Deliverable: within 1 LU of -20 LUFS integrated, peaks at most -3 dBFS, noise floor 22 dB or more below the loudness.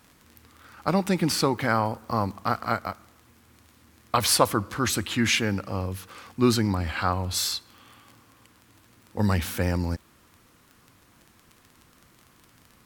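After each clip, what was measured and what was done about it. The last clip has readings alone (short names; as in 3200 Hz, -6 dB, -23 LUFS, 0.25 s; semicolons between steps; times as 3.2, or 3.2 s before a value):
ticks 19/s; loudness -25.5 LUFS; peak -4.5 dBFS; loudness target -20.0 LUFS
-> de-click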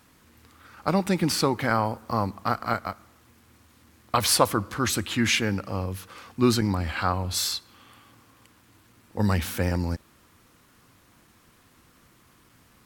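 ticks 0.47/s; loudness -25.5 LUFS; peak -4.5 dBFS; loudness target -20.0 LUFS
-> gain +5.5 dB; limiter -3 dBFS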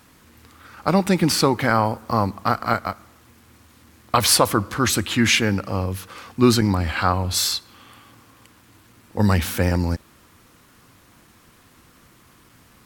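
loudness -20.5 LUFS; peak -3.0 dBFS; noise floor -54 dBFS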